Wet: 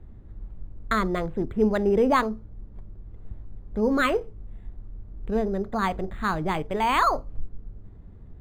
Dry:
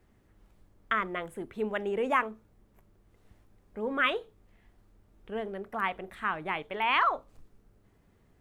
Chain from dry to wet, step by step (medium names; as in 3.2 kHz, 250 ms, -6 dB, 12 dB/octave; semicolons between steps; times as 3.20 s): RIAA curve playback; decimation joined by straight lines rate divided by 8×; trim +6 dB